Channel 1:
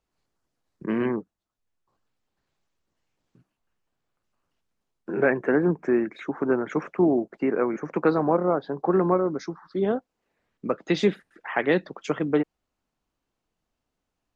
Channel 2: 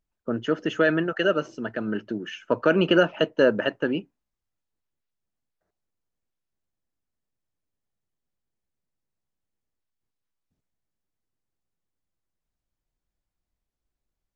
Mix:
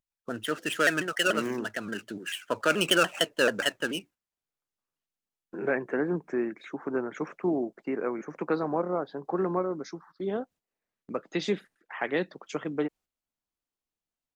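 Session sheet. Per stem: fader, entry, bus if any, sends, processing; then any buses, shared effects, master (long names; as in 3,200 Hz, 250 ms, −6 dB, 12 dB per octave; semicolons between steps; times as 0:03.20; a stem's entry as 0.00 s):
−6.5 dB, 0.45 s, no send, low-shelf EQ 76 Hz −10 dB
−1.5 dB, 0.00 s, no send, running median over 9 samples; tilt shelving filter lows −8 dB, about 1,300 Hz; pitch modulation by a square or saw wave saw down 6.9 Hz, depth 160 cents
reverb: not used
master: noise gate −53 dBFS, range −9 dB; high-shelf EQ 4,300 Hz +6.5 dB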